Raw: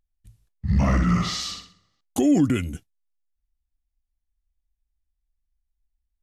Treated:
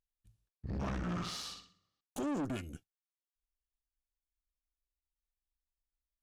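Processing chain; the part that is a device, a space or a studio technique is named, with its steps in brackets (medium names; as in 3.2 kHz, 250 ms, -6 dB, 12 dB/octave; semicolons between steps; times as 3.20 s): tube preamp driven hard (valve stage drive 25 dB, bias 0.8; bass shelf 170 Hz -4 dB; treble shelf 5.8 kHz -4 dB); band-stop 2 kHz, Q 8.6; trim -7 dB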